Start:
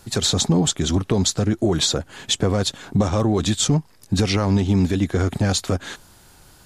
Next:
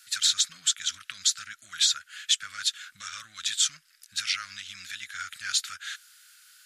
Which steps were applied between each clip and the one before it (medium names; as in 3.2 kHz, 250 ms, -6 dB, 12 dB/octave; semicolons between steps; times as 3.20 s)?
elliptic high-pass 1.4 kHz, stop band 40 dB; trim -1.5 dB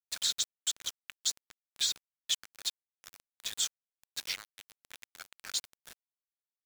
small samples zeroed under -28.5 dBFS; trim -7.5 dB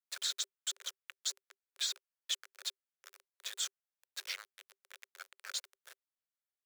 rippled Chebyshev high-pass 380 Hz, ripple 6 dB